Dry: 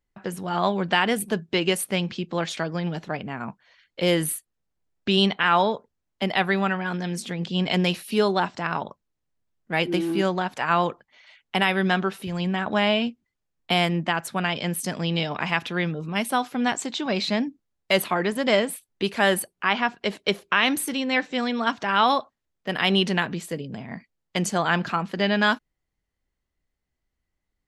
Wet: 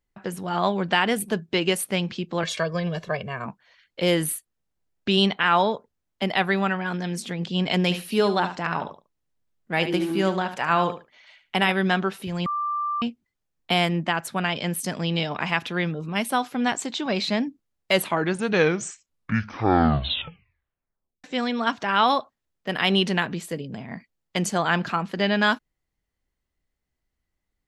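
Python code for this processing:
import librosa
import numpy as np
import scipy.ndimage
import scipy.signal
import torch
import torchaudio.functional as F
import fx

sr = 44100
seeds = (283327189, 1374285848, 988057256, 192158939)

y = fx.comb(x, sr, ms=1.8, depth=0.86, at=(2.43, 3.46))
y = fx.echo_feedback(y, sr, ms=73, feedback_pct=16, wet_db=-11.0, at=(7.83, 11.72))
y = fx.edit(y, sr, fx.bleep(start_s=12.46, length_s=0.56, hz=1180.0, db=-23.5),
    fx.tape_stop(start_s=17.92, length_s=3.32), tone=tone)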